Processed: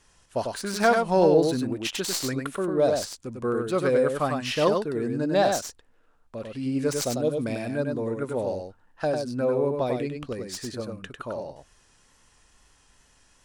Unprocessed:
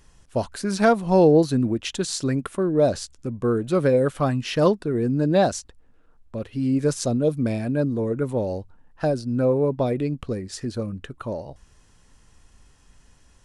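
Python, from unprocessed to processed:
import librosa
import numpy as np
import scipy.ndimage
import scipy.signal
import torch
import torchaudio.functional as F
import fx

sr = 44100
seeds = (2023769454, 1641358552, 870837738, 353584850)

y = fx.tracing_dist(x, sr, depth_ms=0.067)
y = fx.low_shelf(y, sr, hz=340.0, db=-11.0)
y = y + 10.0 ** (-4.5 / 20.0) * np.pad(y, (int(98 * sr / 1000.0), 0))[:len(y)]
y = fx.wow_flutter(y, sr, seeds[0], rate_hz=2.1, depth_cents=27.0)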